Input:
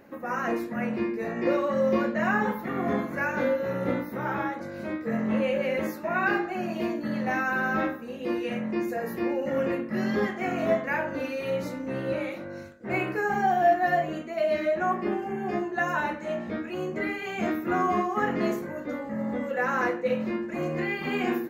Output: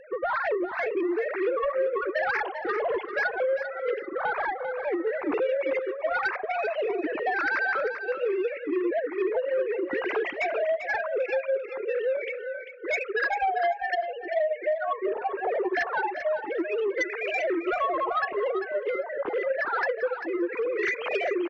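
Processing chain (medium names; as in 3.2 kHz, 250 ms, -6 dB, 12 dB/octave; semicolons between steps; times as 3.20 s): formants replaced by sine waves; reverb removal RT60 1.5 s; compression 6:1, threshold -37 dBFS, peak gain reduction 25.5 dB; sine folder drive 4 dB, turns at -27 dBFS; on a send: feedback delay 394 ms, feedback 15%, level -9.5 dB; on the sum: trim +6 dB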